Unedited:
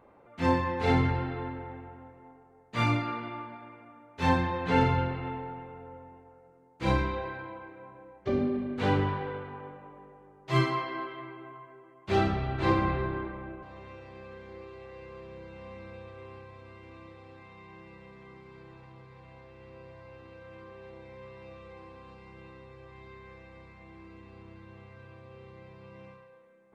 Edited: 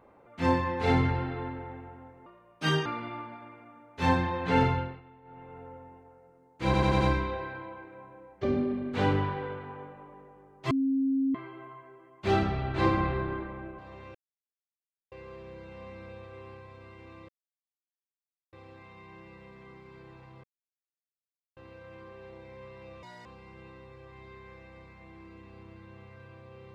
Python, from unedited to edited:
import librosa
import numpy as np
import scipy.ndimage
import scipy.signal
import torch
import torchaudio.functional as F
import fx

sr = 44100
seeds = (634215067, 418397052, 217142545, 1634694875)

y = fx.edit(x, sr, fx.speed_span(start_s=2.26, length_s=0.8, speed=1.34),
    fx.fade_down_up(start_s=4.86, length_s=0.94, db=-18.5, fade_s=0.37),
    fx.stutter(start_s=6.85, slice_s=0.09, count=5),
    fx.bleep(start_s=10.55, length_s=0.64, hz=269.0, db=-23.5),
    fx.silence(start_s=13.99, length_s=0.97),
    fx.insert_silence(at_s=17.13, length_s=1.24),
    fx.silence(start_s=19.04, length_s=1.13),
    fx.speed_span(start_s=21.63, length_s=0.42, speed=1.85), tone=tone)